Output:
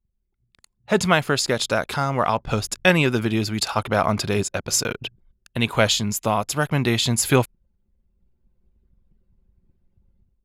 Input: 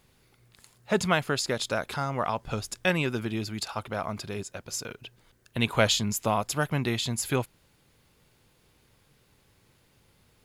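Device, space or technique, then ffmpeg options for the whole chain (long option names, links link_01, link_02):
voice memo with heavy noise removal: -af "anlmdn=0.00251,dynaudnorm=framelen=510:gausssize=3:maxgain=16dB,volume=-1.5dB"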